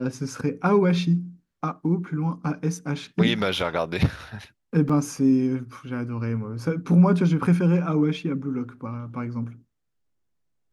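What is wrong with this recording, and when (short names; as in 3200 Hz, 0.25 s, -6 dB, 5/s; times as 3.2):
4.89 gap 5 ms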